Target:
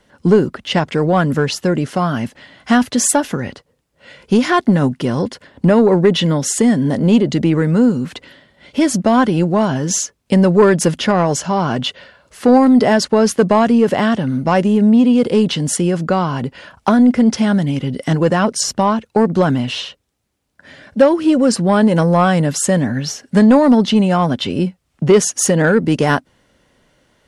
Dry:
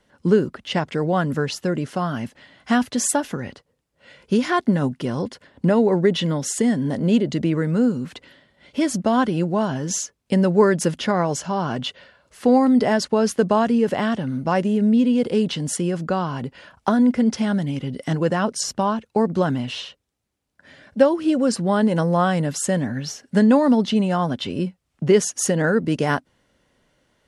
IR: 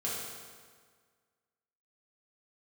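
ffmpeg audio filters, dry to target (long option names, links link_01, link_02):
-af "acontrast=88"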